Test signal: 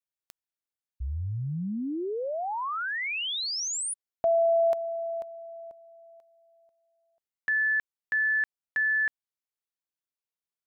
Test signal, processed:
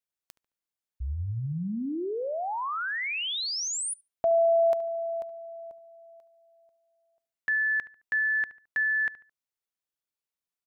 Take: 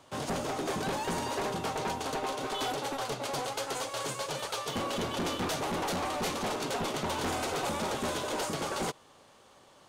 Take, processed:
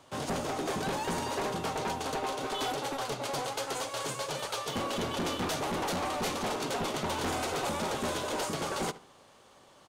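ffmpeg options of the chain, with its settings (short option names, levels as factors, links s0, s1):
-filter_complex "[0:a]asplit=2[s0][s1];[s1]adelay=72,lowpass=f=2700:p=1,volume=0.158,asplit=2[s2][s3];[s3]adelay=72,lowpass=f=2700:p=1,volume=0.35,asplit=2[s4][s5];[s5]adelay=72,lowpass=f=2700:p=1,volume=0.35[s6];[s0][s2][s4][s6]amix=inputs=4:normalize=0"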